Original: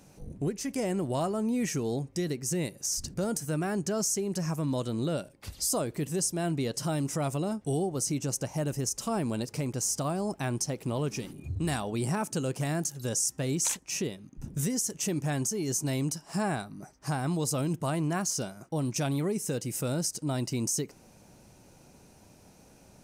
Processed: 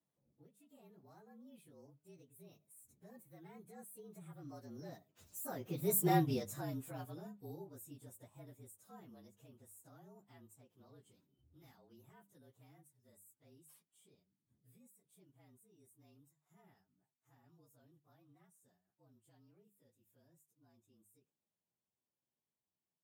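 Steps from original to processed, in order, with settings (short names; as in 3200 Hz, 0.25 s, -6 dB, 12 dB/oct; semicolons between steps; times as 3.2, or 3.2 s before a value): inharmonic rescaling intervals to 112%; Doppler pass-by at 6.07, 16 m/s, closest 1.9 m; HPF 110 Hz; notches 50/100/150/200 Hz; gain +4 dB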